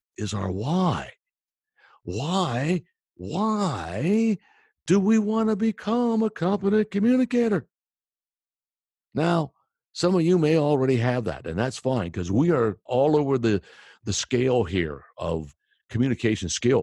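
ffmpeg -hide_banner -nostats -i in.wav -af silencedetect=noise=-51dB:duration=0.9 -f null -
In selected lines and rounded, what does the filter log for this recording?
silence_start: 7.64
silence_end: 9.15 | silence_duration: 1.50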